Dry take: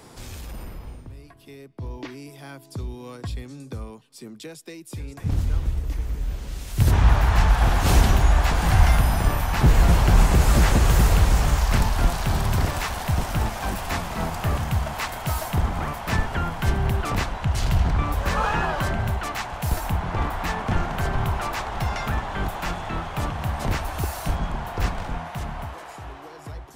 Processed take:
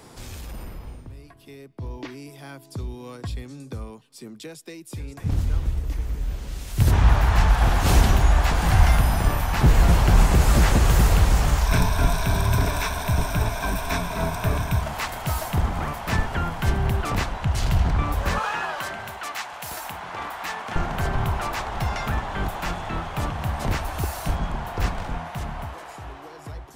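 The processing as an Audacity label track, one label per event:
11.660000	14.820000	EQ curve with evenly spaced ripples crests per octave 1.6, crest to trough 10 dB
18.380000	20.760000	high-pass filter 940 Hz 6 dB per octave

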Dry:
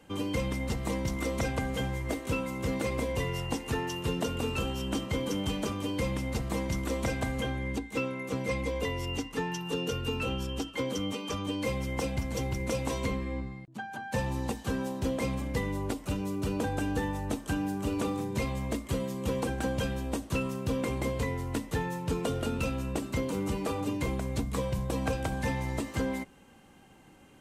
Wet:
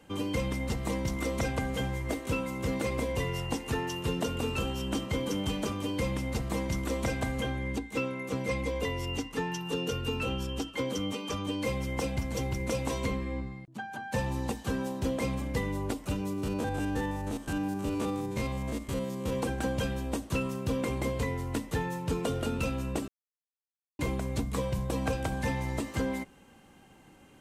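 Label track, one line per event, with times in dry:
16.330000	19.330000	spectrum averaged block by block every 50 ms
23.080000	23.990000	silence

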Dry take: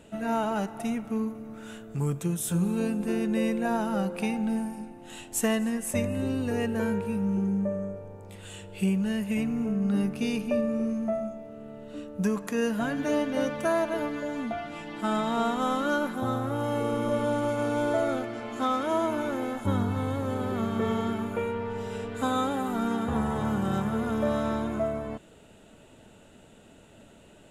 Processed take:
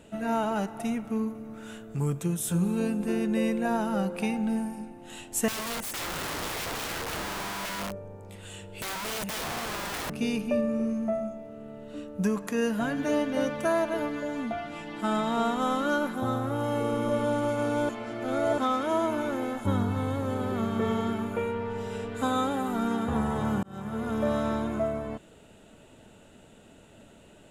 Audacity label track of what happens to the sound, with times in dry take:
5.480000	10.100000	wrap-around overflow gain 29 dB
17.890000	18.580000	reverse
23.630000	24.400000	fade in equal-power

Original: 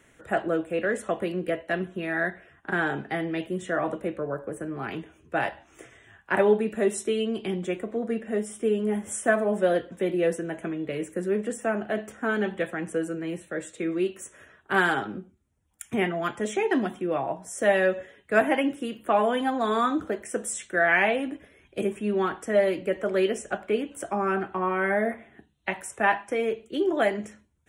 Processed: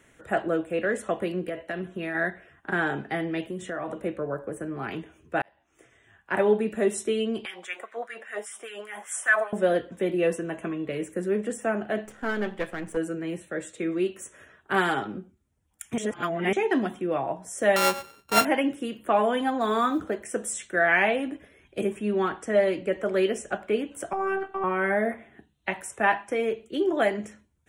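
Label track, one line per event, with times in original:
1.480000	2.150000	downward compressor, threshold −27 dBFS
3.400000	3.970000	downward compressor 4 to 1, threshold −29 dBFS
5.420000	6.640000	fade in
7.450000	9.530000	auto-filter high-pass sine 5 Hz 690–1,800 Hz
10.180000	10.890000	hollow resonant body resonances 1,100/2,700 Hz, height 12 dB
12.050000	12.970000	gain on one half-wave negative side −7 dB
14.750000	15.170000	notch filter 1,600 Hz, Q 10
15.980000	16.530000	reverse
17.760000	18.450000	samples sorted by size in blocks of 32 samples
19.610000	20.010000	log-companded quantiser 8 bits
22.280000	23.010000	low-pass filter 9,800 Hz 24 dB per octave
24.130000	24.640000	phases set to zero 388 Hz

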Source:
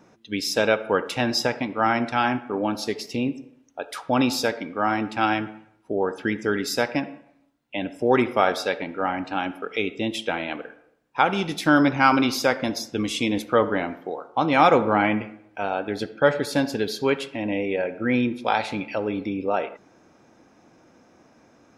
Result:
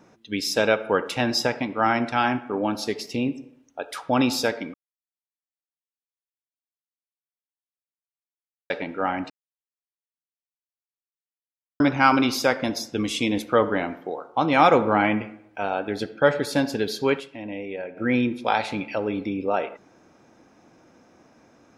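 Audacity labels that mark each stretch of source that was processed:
4.740000	8.700000	silence
9.300000	11.800000	silence
17.200000	17.970000	clip gain −7.5 dB

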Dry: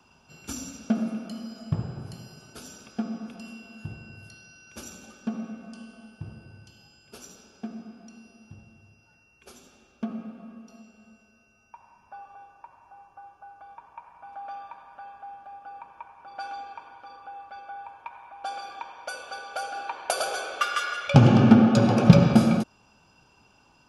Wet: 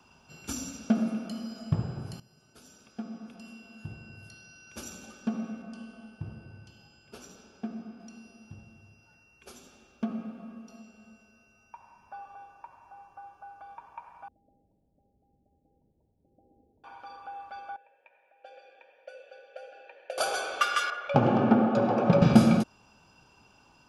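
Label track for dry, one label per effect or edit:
2.200000	4.970000	fade in linear, from −16.5 dB
5.620000	8.000000	high-shelf EQ 4,900 Hz −8.5 dB
14.280000	16.840000	Gaussian smoothing sigma 25 samples
17.760000	20.180000	formant filter e
20.900000	22.220000	resonant band-pass 690 Hz, Q 0.79

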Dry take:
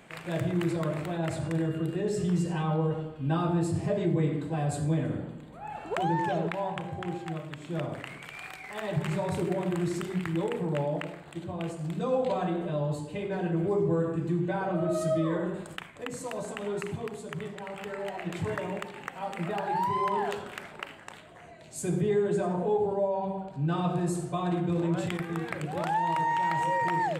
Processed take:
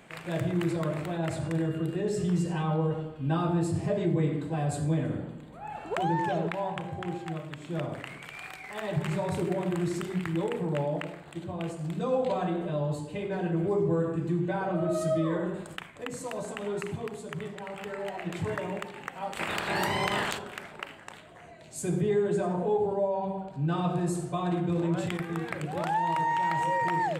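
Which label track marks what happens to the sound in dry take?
19.330000	20.370000	ceiling on every frequency bin ceiling under each frame's peak by 27 dB

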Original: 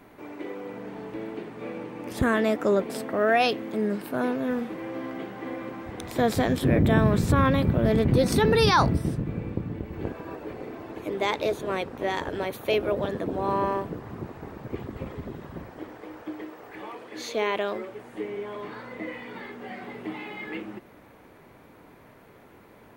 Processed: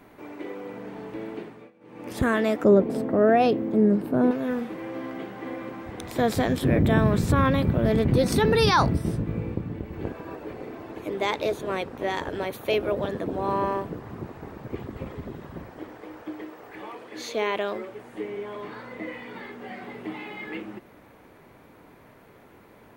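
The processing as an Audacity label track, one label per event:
1.410000	2.100000	duck −23 dB, fades 0.30 s linear
2.640000	4.310000	tilt shelving filter lows +9.5 dB, about 860 Hz
9.040000	9.550000	double-tracking delay 18 ms −4.5 dB

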